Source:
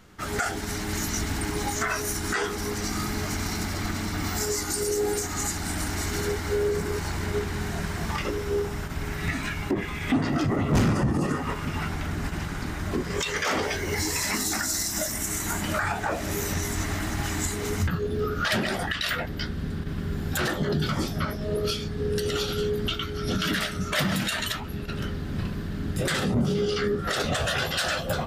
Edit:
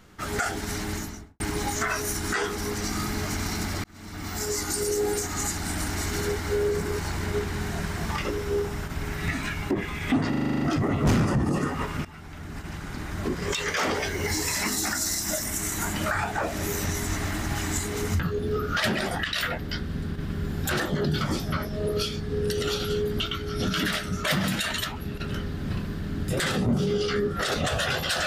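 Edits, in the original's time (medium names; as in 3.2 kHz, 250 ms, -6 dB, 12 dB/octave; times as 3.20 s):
0.80–1.40 s: studio fade out
3.84–4.61 s: fade in
10.29 s: stutter 0.04 s, 9 plays
11.73–13.09 s: fade in linear, from -18 dB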